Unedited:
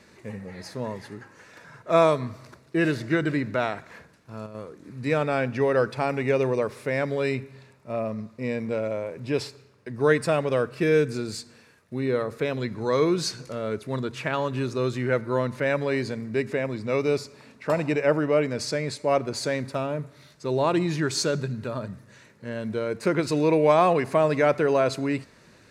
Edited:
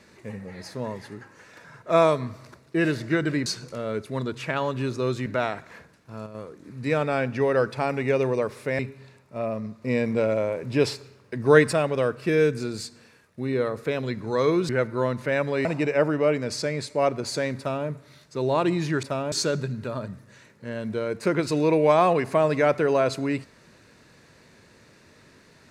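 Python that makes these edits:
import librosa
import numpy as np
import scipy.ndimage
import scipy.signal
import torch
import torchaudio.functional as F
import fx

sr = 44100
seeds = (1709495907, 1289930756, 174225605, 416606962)

y = fx.edit(x, sr, fx.cut(start_s=6.99, length_s=0.34),
    fx.clip_gain(start_s=8.36, length_s=1.91, db=4.5),
    fx.move(start_s=13.23, length_s=1.8, to_s=3.46),
    fx.cut(start_s=15.99, length_s=1.75),
    fx.duplicate(start_s=19.67, length_s=0.29, to_s=21.12), tone=tone)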